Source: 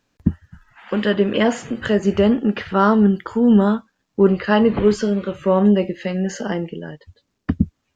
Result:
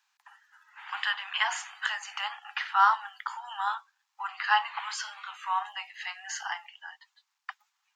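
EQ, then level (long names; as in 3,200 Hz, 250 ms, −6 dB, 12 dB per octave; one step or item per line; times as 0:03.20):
Butterworth high-pass 780 Hz 96 dB per octave
−2.0 dB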